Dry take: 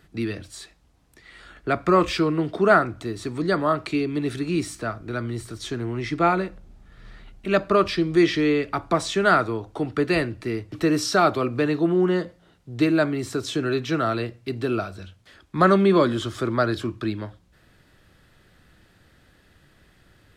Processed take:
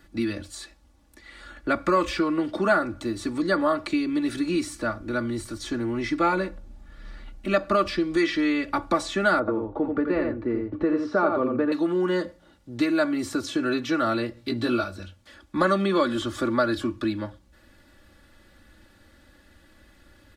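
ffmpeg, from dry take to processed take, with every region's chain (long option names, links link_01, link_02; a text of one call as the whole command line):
ffmpeg -i in.wav -filter_complex "[0:a]asettb=1/sr,asplit=3[link_01][link_02][link_03];[link_01]atrim=end=9.394[link_04];[link_02]atrim=start=9.39:end=11.72,asetpts=PTS-STARTPTS,afade=type=in:duration=0.004:curve=qsin,afade=type=out:start_time=2.326:duration=0.004:curve=qsin,lowpass=1200,equalizer=frequency=450:width_type=o:width=0.25:gain=8.5,aecho=1:1:85:0.531,atrim=end_sample=102753[link_05];[link_03]atrim=start=11.716[link_06];[link_04][link_05]acrossfade=duration=0.004:curve1=hsin:curve2=qsin[link_07];[link_07][link_06]acrossfade=duration=0.004:curve1=qsin:curve2=hsin,asettb=1/sr,asplit=3[link_08][link_09][link_10];[link_08]atrim=end=14.354[link_11];[link_09]atrim=start=14.35:end=14.84,asetpts=PTS-STARTPTS,afade=type=in:duration=0.004:curve=qsin,afade=type=out:start_time=0.486:duration=0.004:curve=qsin,equalizer=frequency=3800:width_type=o:width=0.46:gain=7,asplit=2[link_12][link_13];[link_13]adelay=17,volume=-2dB[link_14];[link_12][link_14]amix=inputs=2:normalize=0,atrim=end_sample=21609[link_15];[link_10]atrim=start=14.836[link_16];[link_11][link_15]acrossfade=duration=0.004:curve1=hsin:curve2=qsin[link_17];[link_17][link_16]acrossfade=duration=0.004:curve1=qsin:curve2=hsin,equalizer=frequency=2600:width=1.5:gain=-2.5,aecho=1:1:3.5:0.77,acrossover=split=880|2500[link_18][link_19][link_20];[link_18]acompressor=threshold=-22dB:ratio=4[link_21];[link_19]acompressor=threshold=-24dB:ratio=4[link_22];[link_20]acompressor=threshold=-36dB:ratio=4[link_23];[link_21][link_22][link_23]amix=inputs=3:normalize=0" out.wav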